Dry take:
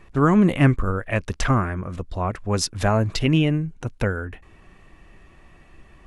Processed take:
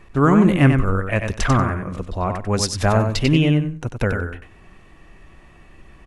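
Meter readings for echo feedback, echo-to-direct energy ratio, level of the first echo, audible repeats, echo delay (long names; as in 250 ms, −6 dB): 16%, −6.0 dB, −6.0 dB, 2, 94 ms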